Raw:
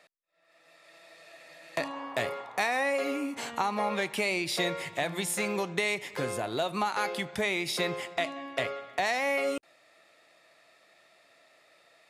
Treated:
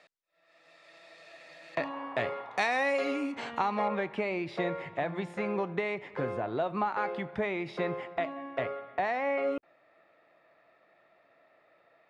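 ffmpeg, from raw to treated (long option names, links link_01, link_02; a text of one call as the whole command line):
ffmpeg -i in.wav -af "asetnsamples=nb_out_samples=441:pad=0,asendcmd='1.75 lowpass f 2600;2.51 lowpass f 5400;3.32 lowpass f 3100;3.88 lowpass f 1600',lowpass=5900" out.wav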